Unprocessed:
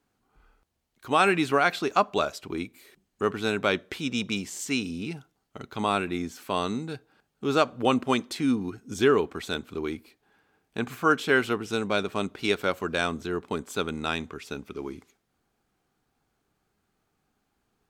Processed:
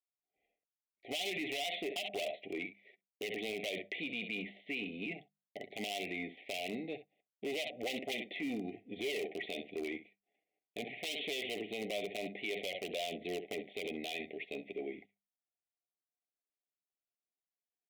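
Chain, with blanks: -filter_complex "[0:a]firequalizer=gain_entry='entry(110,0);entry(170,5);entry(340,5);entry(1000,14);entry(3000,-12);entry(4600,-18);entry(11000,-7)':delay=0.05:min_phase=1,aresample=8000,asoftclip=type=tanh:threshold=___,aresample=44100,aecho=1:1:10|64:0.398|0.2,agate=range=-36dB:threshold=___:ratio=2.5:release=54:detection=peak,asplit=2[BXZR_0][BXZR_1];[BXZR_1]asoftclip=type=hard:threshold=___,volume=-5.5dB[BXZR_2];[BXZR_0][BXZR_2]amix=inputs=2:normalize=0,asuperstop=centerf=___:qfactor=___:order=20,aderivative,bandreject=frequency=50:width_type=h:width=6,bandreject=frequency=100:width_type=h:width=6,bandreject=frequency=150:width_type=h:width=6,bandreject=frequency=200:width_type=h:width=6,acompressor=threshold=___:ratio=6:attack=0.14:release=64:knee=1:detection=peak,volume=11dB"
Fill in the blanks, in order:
-9.5dB, -47dB, -17dB, 1200, 1, -43dB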